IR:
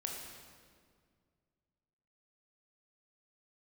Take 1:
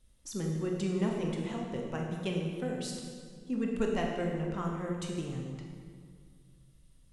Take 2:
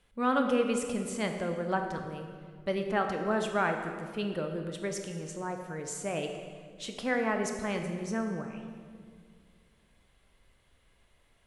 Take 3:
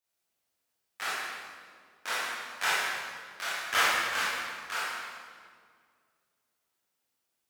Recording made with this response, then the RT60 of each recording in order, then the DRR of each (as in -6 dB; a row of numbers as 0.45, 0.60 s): 1; 2.0, 2.0, 2.0 s; -0.5, 4.5, -9.5 dB